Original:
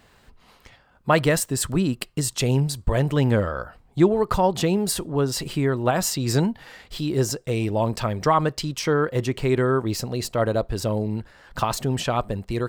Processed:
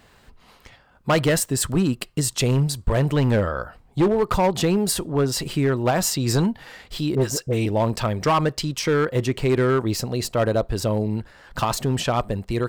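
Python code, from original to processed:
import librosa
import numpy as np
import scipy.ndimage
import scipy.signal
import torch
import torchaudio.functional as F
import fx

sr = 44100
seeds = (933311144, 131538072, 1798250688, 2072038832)

y = fx.dispersion(x, sr, late='highs', ms=59.0, hz=1000.0, at=(7.15, 7.66))
y = np.clip(y, -10.0 ** (-15.5 / 20.0), 10.0 ** (-15.5 / 20.0))
y = y * librosa.db_to_amplitude(2.0)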